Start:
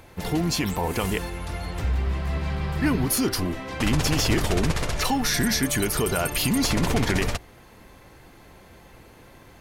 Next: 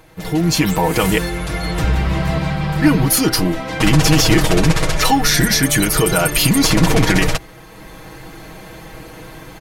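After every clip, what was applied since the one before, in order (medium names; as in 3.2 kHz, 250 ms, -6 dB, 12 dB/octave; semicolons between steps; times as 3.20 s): comb 6.3 ms, depth 74%; level rider gain up to 12 dB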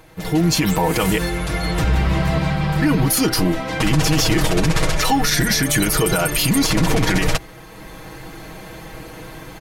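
peak limiter -8 dBFS, peak gain reduction 6.5 dB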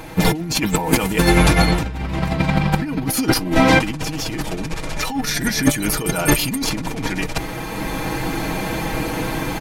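compressor with a negative ratio -23 dBFS, ratio -0.5; small resonant body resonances 250/860/2400 Hz, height 8 dB; trim +4.5 dB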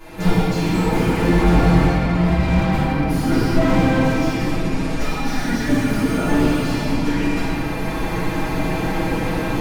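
reverberation RT60 2.9 s, pre-delay 3 ms, DRR -16.5 dB; slew-rate limiter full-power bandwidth 700 Hz; trim -16 dB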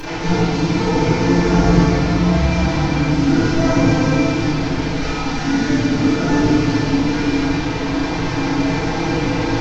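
one-bit delta coder 32 kbps, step -19 dBFS; FDN reverb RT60 0.68 s, low-frequency decay 1.2×, high-frequency decay 0.5×, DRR -6.5 dB; trim -7 dB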